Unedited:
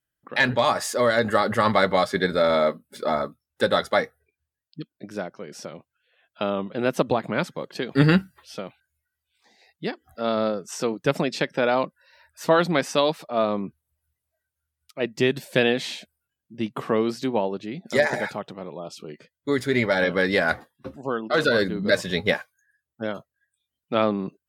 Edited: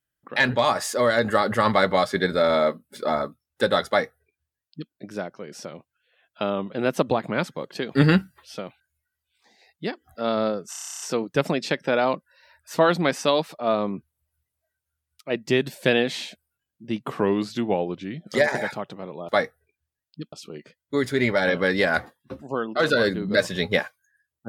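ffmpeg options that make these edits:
-filter_complex "[0:a]asplit=15[a][b][c][d][e][f][g][h][i][j][k][l][m][n][o];[a]atrim=end=10.732[p];[b]atrim=start=10.698:end=10.732[q];[c]atrim=start=10.698:end=10.732[r];[d]atrim=start=10.698:end=10.732[s];[e]atrim=start=10.698:end=10.732[t];[f]atrim=start=10.698:end=10.732[u];[g]atrim=start=10.698:end=10.732[v];[h]atrim=start=10.698:end=10.732[w];[i]atrim=start=10.698:end=10.732[x];[j]atrim=start=10.698:end=10.732[y];[k]atrim=start=10.698:end=16.904[z];[l]atrim=start=16.9:end=17.94,asetpts=PTS-STARTPTS,asetrate=39690,aresample=44100[aa];[m]atrim=start=17.936:end=18.872[ab];[n]atrim=start=3.878:end=4.922[ac];[o]atrim=start=18.868[ad];[p][q]acrossfade=d=0.004:c1=hsin:c2=hsin[ae];[ae][r]acrossfade=d=0.004:c1=hsin:c2=hsin[af];[af][s]acrossfade=d=0.004:c1=hsin:c2=hsin[ag];[ag][t]acrossfade=d=0.004:c1=hsin:c2=hsin[ah];[ah][u]acrossfade=d=0.004:c1=hsin:c2=hsin[ai];[ai][v]acrossfade=d=0.004:c1=hsin:c2=hsin[aj];[aj][w]acrossfade=d=0.004:c1=hsin:c2=hsin[ak];[ak][x]acrossfade=d=0.004:c1=hsin:c2=hsin[al];[al][y]acrossfade=d=0.004:c1=hsin:c2=hsin[am];[am][z]acrossfade=d=0.004:c1=hsin:c2=hsin[an];[an][aa]acrossfade=d=0.004:c1=hsin:c2=hsin[ao];[ao][ab]acrossfade=d=0.004:c1=hsin:c2=hsin[ap];[ap][ac]acrossfade=d=0.004:c1=hsin:c2=hsin[aq];[aq][ad]acrossfade=d=0.004:c1=hsin:c2=hsin"

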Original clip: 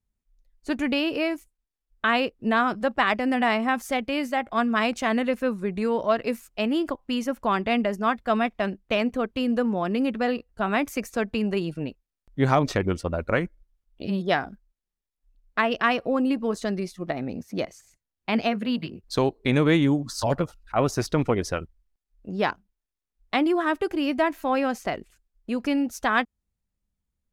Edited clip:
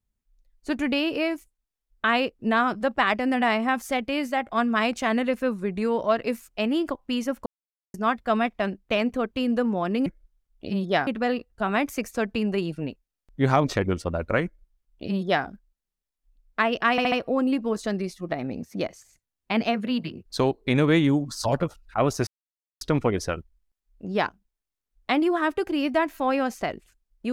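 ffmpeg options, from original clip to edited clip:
-filter_complex "[0:a]asplit=9[a][b][c][d][e][f][g][h][i];[a]atrim=end=7.46,asetpts=PTS-STARTPTS,afade=t=out:st=7.456:d=0.004:c=hsin[j];[b]atrim=start=7.46:end=7.94,asetpts=PTS-STARTPTS,volume=0[k];[c]atrim=start=7.94:end=10.062,asetpts=PTS-STARTPTS,afade=t=in:d=0.004:c=hsin[l];[d]atrim=start=13.428:end=14.442[m];[e]atrim=start=10.058:end=15.972[n];[f]atrim=start=15.898:end=15.972[o];[g]atrim=start=15.898:end=15.972[p];[h]atrim=start=15.898:end=21.05,asetpts=PTS-STARTPTS,afade=t=out:st=5.148:d=0.004:c=hsin,apad=pad_dur=0.54[q];[i]atrim=start=21.05,asetpts=PTS-STARTPTS,afade=t=in:d=0.004:c=hsin[r];[j][k][l]concat=n=3:v=0:a=1[s];[s][m]acrossfade=d=0.004:c1=hsin:c2=hsin[t];[t][n]acrossfade=d=0.004:c1=hsin:c2=hsin[u];[u][o]acrossfade=d=0.004:c1=hsin:c2=hsin[v];[v][p]acrossfade=d=0.004:c1=hsin:c2=hsin[w];[q][r]concat=n=2:v=0:a=1[x];[w][x]acrossfade=d=0.004:c1=hsin:c2=hsin"

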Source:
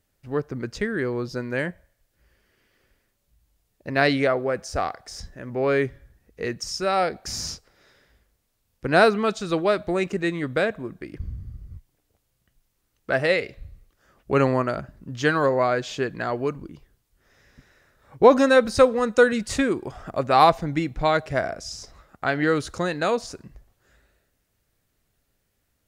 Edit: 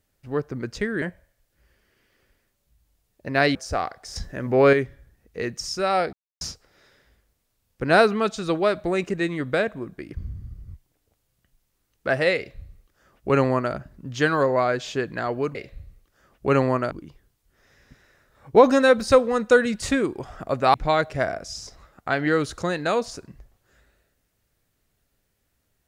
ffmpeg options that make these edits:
-filter_complex "[0:a]asplit=10[a][b][c][d][e][f][g][h][i][j];[a]atrim=end=1.022[k];[b]atrim=start=1.628:end=4.162[l];[c]atrim=start=4.578:end=5.192[m];[d]atrim=start=5.188:end=5.762,asetpts=PTS-STARTPTS,volume=6.5dB[n];[e]atrim=start=5.758:end=7.16,asetpts=PTS-STARTPTS,afade=t=out:st=1.398:d=0.004:c=hsin[o];[f]atrim=start=7.16:end=7.44,asetpts=PTS-STARTPTS,volume=0[p];[g]atrim=start=7.44:end=16.582,asetpts=PTS-STARTPTS,afade=t=in:d=0.004:c=hsin[q];[h]atrim=start=13.398:end=14.762[r];[i]atrim=start=16.578:end=20.412[s];[j]atrim=start=20.898[t];[k][l]acrossfade=d=0.004:c1=hsin:c2=hsin[u];[u][m]acrossfade=d=0.004:c1=hsin:c2=hsin[v];[v][n]acrossfade=d=0.004:c1=hsin:c2=hsin[w];[o][p][q]concat=n=3:v=0:a=1[x];[w][x]acrossfade=d=0.004:c1=hsin:c2=hsin[y];[y][r]acrossfade=d=0.004:c1=hsin:c2=hsin[z];[z][s]acrossfade=d=0.004:c1=hsin:c2=hsin[aa];[aa][t]acrossfade=d=0.004:c1=hsin:c2=hsin"

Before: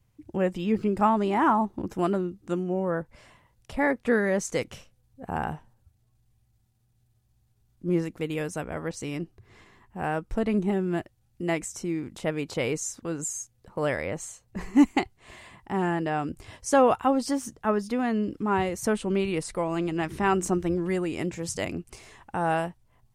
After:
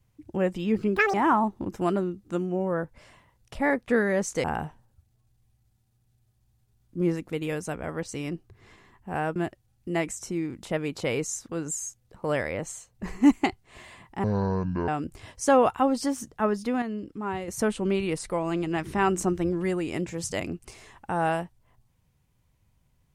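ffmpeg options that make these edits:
-filter_complex "[0:a]asplit=9[a][b][c][d][e][f][g][h][i];[a]atrim=end=0.964[j];[b]atrim=start=0.96:end=1.31,asetpts=PTS-STARTPTS,asetrate=86877,aresample=44100,atrim=end_sample=7835,asetpts=PTS-STARTPTS[k];[c]atrim=start=1.306:end=4.612[l];[d]atrim=start=5.318:end=10.242[m];[e]atrim=start=10.888:end=15.774[n];[f]atrim=start=15.77:end=16.13,asetpts=PTS-STARTPTS,asetrate=24696,aresample=44100[o];[g]atrim=start=16.126:end=18.072[p];[h]atrim=start=18.068:end=18.732,asetpts=PTS-STARTPTS,volume=-6.5dB[q];[i]atrim=start=18.728[r];[j][k]acrossfade=d=0.004:c1=hsin:c2=hsin[s];[s][l]acrossfade=d=0.004:c1=hsin:c2=hsin[t];[t][m]acrossfade=d=0.004:c1=hsin:c2=hsin[u];[u][n]acrossfade=d=0.004:c1=hsin:c2=hsin[v];[v][o]acrossfade=d=0.004:c1=hsin:c2=hsin[w];[w][p]acrossfade=d=0.004:c1=hsin:c2=hsin[x];[x][q]acrossfade=d=0.004:c1=hsin:c2=hsin[y];[y][r]acrossfade=d=0.004:c1=hsin:c2=hsin"

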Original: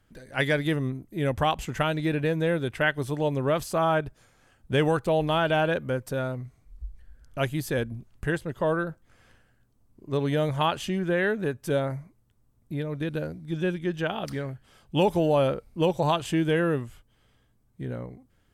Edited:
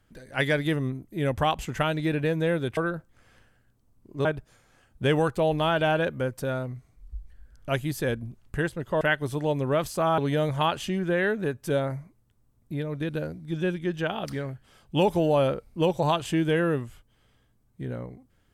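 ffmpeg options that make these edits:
-filter_complex "[0:a]asplit=5[a][b][c][d][e];[a]atrim=end=2.772[f];[b]atrim=start=8.698:end=10.182[g];[c]atrim=start=3.938:end=8.702[h];[d]atrim=start=2.768:end=3.942[i];[e]atrim=start=10.178[j];[f][g]acrossfade=d=0.004:c1=hsin:c2=hsin[k];[k][h]acrossfade=d=0.004:c1=hsin:c2=hsin[l];[l][i]acrossfade=d=0.004:c1=hsin:c2=hsin[m];[m][j]acrossfade=d=0.004:c1=hsin:c2=hsin"

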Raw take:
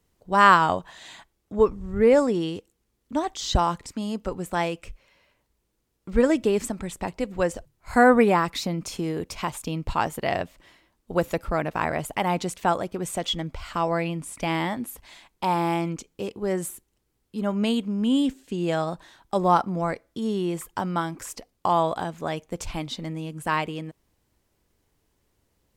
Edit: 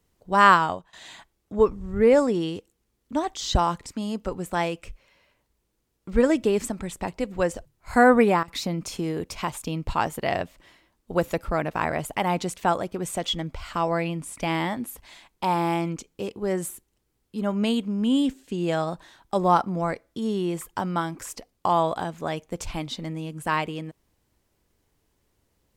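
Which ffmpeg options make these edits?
-filter_complex "[0:a]asplit=4[a][b][c][d];[a]atrim=end=0.93,asetpts=PTS-STARTPTS,afade=t=out:st=0.5:d=0.43:silence=0.1[e];[b]atrim=start=0.93:end=8.43,asetpts=PTS-STARTPTS,afade=t=in:d=0.004:c=hsin:silence=0.1,afade=t=out:st=7.23:d=0.27:c=log:silence=0.112202[f];[c]atrim=start=8.43:end=8.48,asetpts=PTS-STARTPTS,volume=-19dB[g];[d]atrim=start=8.48,asetpts=PTS-STARTPTS,afade=t=in:d=0.27:c=log:silence=0.112202[h];[e][f][g][h]concat=n=4:v=0:a=1"

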